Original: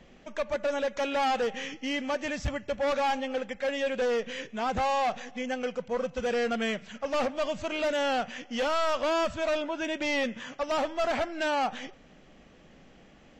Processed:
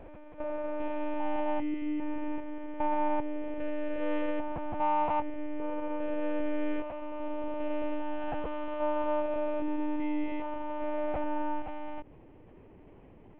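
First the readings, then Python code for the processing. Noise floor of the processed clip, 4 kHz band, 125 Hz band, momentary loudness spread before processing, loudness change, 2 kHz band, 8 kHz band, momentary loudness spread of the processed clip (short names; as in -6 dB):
-54 dBFS, -19.0 dB, -5.5 dB, 7 LU, -4.0 dB, -11.5 dB, n/a, 8 LU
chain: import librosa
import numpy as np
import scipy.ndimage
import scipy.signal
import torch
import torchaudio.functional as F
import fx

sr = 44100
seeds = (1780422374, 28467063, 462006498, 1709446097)

y = fx.spec_steps(x, sr, hold_ms=400)
y = fx.cabinet(y, sr, low_hz=230.0, low_slope=12, high_hz=2000.0, hz=(270.0, 380.0, 570.0, 910.0, 1300.0, 1800.0), db=(5, 8, -8, 4, -10, -10))
y = fx.lpc_monotone(y, sr, seeds[0], pitch_hz=300.0, order=10)
y = y * librosa.db_to_amplitude(4.5)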